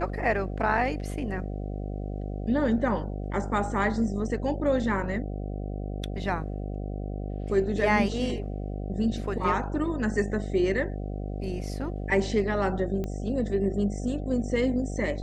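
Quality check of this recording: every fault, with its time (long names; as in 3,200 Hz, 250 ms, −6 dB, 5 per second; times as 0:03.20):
mains buzz 50 Hz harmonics 15 −33 dBFS
0:13.04: click −21 dBFS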